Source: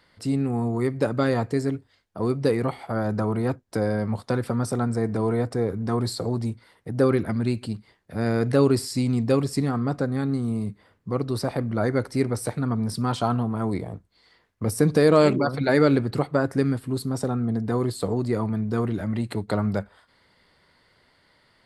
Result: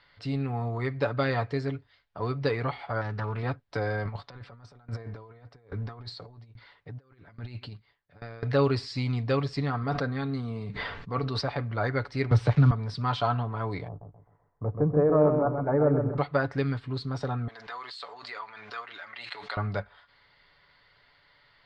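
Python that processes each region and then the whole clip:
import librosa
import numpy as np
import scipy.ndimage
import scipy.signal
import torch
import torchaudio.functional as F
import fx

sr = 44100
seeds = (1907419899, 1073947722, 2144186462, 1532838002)

y = fx.chain(x, sr, fx.peak_eq(hz=610.0, db=-7.5, octaves=1.6),
    fx.doppler_dist(depth_ms=0.25), at=(3.01, 3.43))
y = fx.chain(y, sr, fx.lowpass(hz=9000.0, slope=12),
    fx.over_compress(threshold_db=-28.0, ratio=-0.5),
    fx.tremolo_decay(direction='decaying', hz=1.2, depth_db=22), at=(4.05, 8.43))
y = fx.chain(y, sr, fx.comb(ms=4.4, depth=0.31),
    fx.sustainer(db_per_s=38.0), at=(9.83, 11.41))
y = fx.chain(y, sr, fx.peak_eq(hz=110.0, db=13.0, octaves=3.0),
    fx.sample_gate(floor_db=-37.0),
    fx.band_squash(depth_pct=40), at=(12.31, 12.71))
y = fx.chain(y, sr, fx.lowpass(hz=1000.0, slope=24),
    fx.echo_feedback(ms=130, feedback_pct=35, wet_db=-6), at=(13.88, 16.18))
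y = fx.chain(y, sr, fx.highpass(hz=1200.0, slope=12),
    fx.pre_swell(db_per_s=42.0), at=(17.48, 19.57))
y = scipy.signal.sosfilt(scipy.signal.butter(4, 4300.0, 'lowpass', fs=sr, output='sos'), y)
y = fx.peak_eq(y, sr, hz=260.0, db=-12.5, octaves=2.2)
y = y + 0.41 * np.pad(y, (int(7.0 * sr / 1000.0), 0))[:len(y)]
y = y * librosa.db_to_amplitude(1.5)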